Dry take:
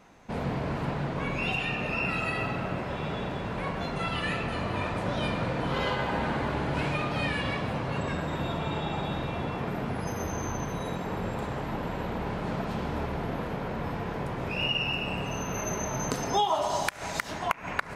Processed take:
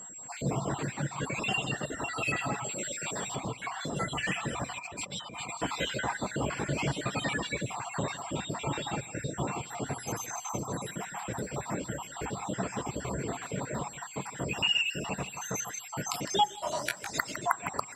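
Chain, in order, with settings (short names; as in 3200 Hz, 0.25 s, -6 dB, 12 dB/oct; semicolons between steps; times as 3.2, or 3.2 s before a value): random spectral dropouts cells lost 53%; HPF 96 Hz 12 dB/oct; high shelf 3800 Hz +5.5 dB; whine 7600 Hz -44 dBFS; 2.64–3.36 tilt +2.5 dB/oct; echo 0.157 s -8.5 dB; on a send at -14.5 dB: reverb RT60 0.60 s, pre-delay 3 ms; 4.79–5.51 on the sum: negative-ratio compressor -40 dBFS, ratio -1; de-hum 124.8 Hz, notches 15; reverb removal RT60 1.3 s; 16.47–17.12 detuned doubles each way 20 cents -> 30 cents; gain +1.5 dB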